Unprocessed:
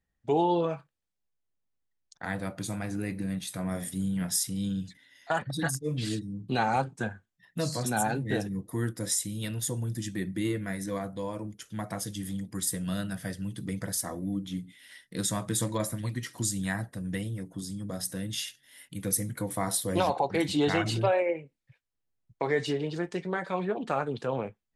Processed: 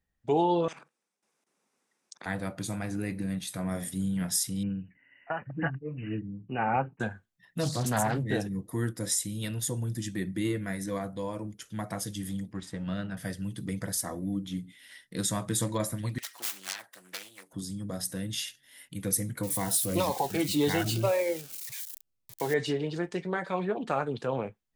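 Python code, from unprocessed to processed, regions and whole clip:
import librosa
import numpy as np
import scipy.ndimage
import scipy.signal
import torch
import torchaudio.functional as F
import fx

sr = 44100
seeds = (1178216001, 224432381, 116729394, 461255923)

y = fx.chain(x, sr, fx.level_steps(step_db=16),
    fx.cabinet(low_hz=220.0, low_slope=24, high_hz=9600.0, hz=(290.0, 630.0, 1800.0, 3100.0, 4300.0, 7100.0), db=(-5, -4, -4, -8, -8, -4)),
    fx.spectral_comp(ratio=10.0), at=(0.68, 2.26))
y = fx.chain(y, sr, fx.tremolo(hz=1.9, depth=0.57),
    fx.brickwall_lowpass(high_hz=3000.0), at=(4.63, 7.0))
y = fx.chain(y, sr, fx.peak_eq(hz=97.0, db=7.0, octaves=0.74),
    fx.doppler_dist(depth_ms=0.34), at=(7.63, 8.26))
y = fx.chain(y, sr, fx.law_mismatch(coded='A'),
    fx.lowpass(hz=3000.0, slope=12), at=(12.52, 13.17))
y = fx.chain(y, sr, fx.self_delay(depth_ms=0.78),
    fx.highpass(hz=970.0, slope=12),
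    fx.band_squash(depth_pct=40), at=(16.18, 17.53))
y = fx.chain(y, sr, fx.crossing_spikes(level_db=-28.0),
    fx.notch_cascade(direction='falling', hz=1.8), at=(19.43, 22.54))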